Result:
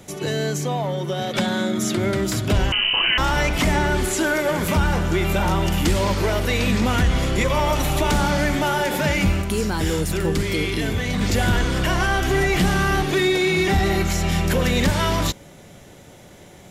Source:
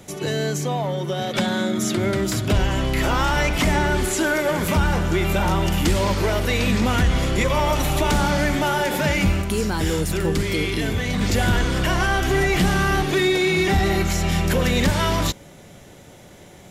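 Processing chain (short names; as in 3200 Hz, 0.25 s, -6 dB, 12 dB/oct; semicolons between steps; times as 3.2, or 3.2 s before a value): 2.72–3.18 inverted band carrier 3000 Hz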